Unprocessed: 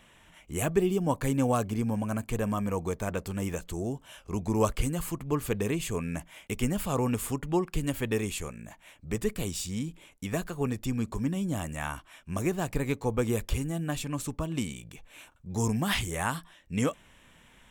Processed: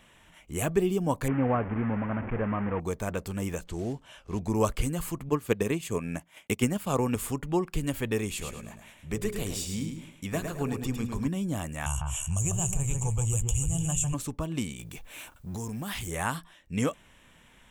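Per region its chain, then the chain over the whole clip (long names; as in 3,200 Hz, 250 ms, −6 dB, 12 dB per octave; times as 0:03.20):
0:01.28–0:02.80: linear delta modulator 16 kbit/s, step −29.5 dBFS + low-pass filter 2,100 Hz 24 dB per octave
0:03.67–0:04.40: one scale factor per block 5 bits + high-frequency loss of the air 52 metres
0:05.29–0:07.16: high-pass filter 95 Hz + transient designer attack +6 dB, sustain −8 dB
0:08.28–0:11.28: mains-hum notches 60/120/180/240/300/360/420/480/540 Hz + repeating echo 107 ms, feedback 32%, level −6 dB
0:11.86–0:14.14: drawn EQ curve 110 Hz 0 dB, 170 Hz −8 dB, 250 Hz −24 dB, 570 Hz −17 dB, 870 Hz −12 dB, 2,000 Hz −25 dB, 2,900 Hz −5 dB, 4,400 Hz −28 dB, 6,900 Hz +10 dB, 15,000 Hz −14 dB + delay that swaps between a low-pass and a high-pass 148 ms, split 2,000 Hz, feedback 56%, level −6 dB + envelope flattener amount 70%
0:14.79–0:16.08: mu-law and A-law mismatch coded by mu + high-shelf EQ 12,000 Hz +10 dB + downward compressor 5 to 1, threshold −32 dBFS
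whole clip: no processing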